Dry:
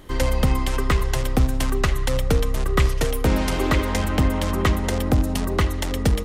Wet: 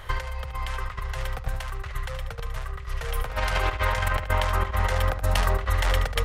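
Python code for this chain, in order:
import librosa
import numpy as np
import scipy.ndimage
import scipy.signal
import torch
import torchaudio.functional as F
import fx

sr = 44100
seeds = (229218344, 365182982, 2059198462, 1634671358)

p1 = fx.curve_eq(x, sr, hz=(110.0, 280.0, 490.0, 1500.0, 7100.0), db=(0, -24, -3, 6, -5))
p2 = fx.over_compress(p1, sr, threshold_db=-25.0, ratio=-0.5)
y = p2 + fx.echo_single(p2, sr, ms=74, db=-9.5, dry=0)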